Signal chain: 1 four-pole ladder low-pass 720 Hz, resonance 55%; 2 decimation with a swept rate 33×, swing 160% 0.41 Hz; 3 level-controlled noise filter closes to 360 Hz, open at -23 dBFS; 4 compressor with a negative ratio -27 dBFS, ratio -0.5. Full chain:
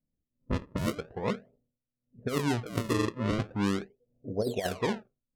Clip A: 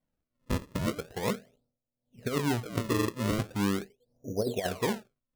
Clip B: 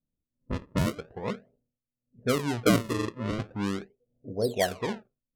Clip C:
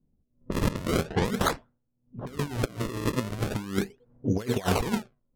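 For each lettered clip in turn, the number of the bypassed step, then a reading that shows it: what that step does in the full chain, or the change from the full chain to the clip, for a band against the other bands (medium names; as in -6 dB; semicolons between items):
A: 3, 8 kHz band +3.5 dB; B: 4, crest factor change +3.5 dB; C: 1, 8 kHz band +2.5 dB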